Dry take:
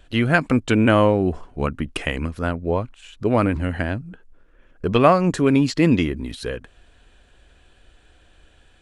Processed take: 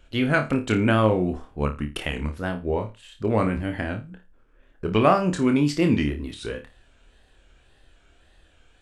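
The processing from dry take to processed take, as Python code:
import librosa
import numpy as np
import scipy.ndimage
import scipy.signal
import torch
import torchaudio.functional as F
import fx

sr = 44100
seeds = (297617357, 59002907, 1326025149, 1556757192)

y = fx.wow_flutter(x, sr, seeds[0], rate_hz=2.1, depth_cents=130.0)
y = fx.room_flutter(y, sr, wall_m=4.7, rt60_s=0.26)
y = y * 10.0 ** (-4.5 / 20.0)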